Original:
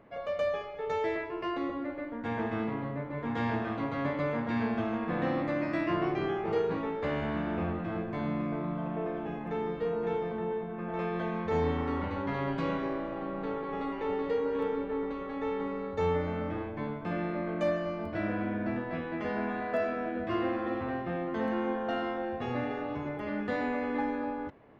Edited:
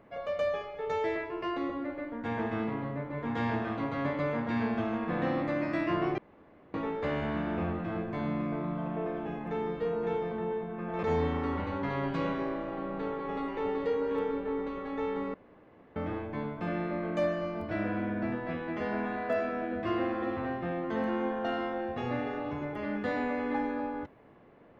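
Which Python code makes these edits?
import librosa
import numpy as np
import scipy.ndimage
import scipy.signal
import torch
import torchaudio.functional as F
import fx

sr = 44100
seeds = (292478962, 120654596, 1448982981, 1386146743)

y = fx.edit(x, sr, fx.room_tone_fill(start_s=6.18, length_s=0.56),
    fx.cut(start_s=11.03, length_s=0.44),
    fx.room_tone_fill(start_s=15.78, length_s=0.62), tone=tone)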